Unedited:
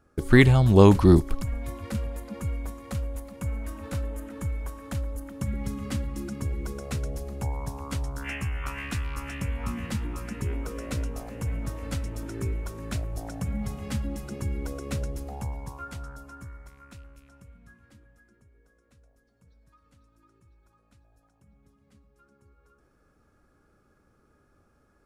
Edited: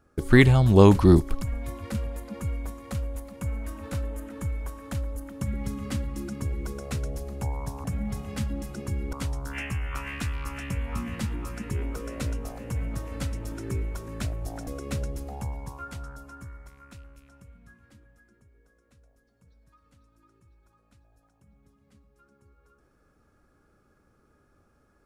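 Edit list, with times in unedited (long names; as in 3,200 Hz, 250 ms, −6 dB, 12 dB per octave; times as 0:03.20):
0:13.38–0:14.67: move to 0:07.84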